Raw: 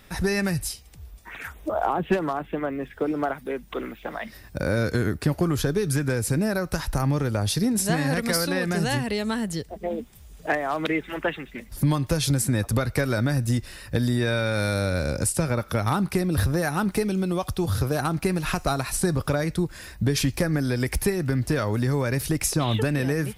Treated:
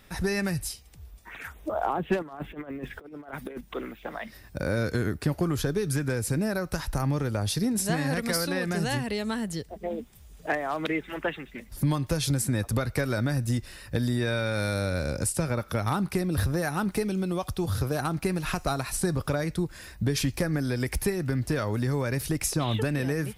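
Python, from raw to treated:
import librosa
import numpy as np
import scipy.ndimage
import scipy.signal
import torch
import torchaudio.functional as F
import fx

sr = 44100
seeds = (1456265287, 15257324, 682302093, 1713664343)

y = fx.over_compress(x, sr, threshold_db=-33.0, ratio=-0.5, at=(2.22, 3.61))
y = y * librosa.db_to_amplitude(-3.5)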